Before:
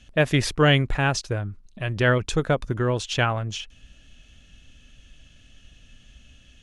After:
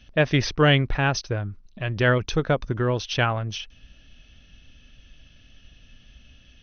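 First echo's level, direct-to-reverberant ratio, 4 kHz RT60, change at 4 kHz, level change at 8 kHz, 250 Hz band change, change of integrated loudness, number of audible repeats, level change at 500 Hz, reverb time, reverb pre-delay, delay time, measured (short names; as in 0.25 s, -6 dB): none, none, none, 0.0 dB, -3.0 dB, 0.0 dB, 0.0 dB, none, 0.0 dB, none, none, none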